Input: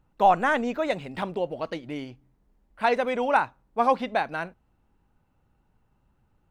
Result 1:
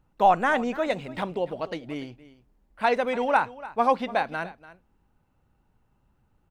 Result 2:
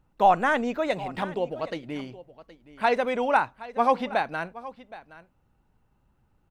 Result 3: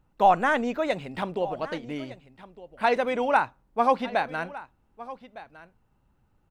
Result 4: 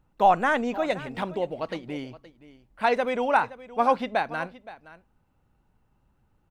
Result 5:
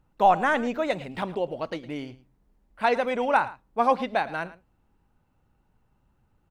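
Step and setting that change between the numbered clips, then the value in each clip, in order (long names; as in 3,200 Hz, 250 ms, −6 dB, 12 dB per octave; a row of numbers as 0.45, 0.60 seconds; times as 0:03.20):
single-tap delay, delay time: 292, 770, 1,209, 520, 110 milliseconds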